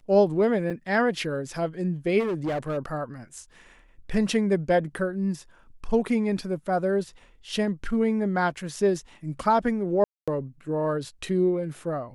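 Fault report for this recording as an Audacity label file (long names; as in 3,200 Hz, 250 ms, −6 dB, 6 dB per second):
0.700000	0.710000	drop-out 5.1 ms
2.190000	2.780000	clipping −24 dBFS
10.040000	10.280000	drop-out 236 ms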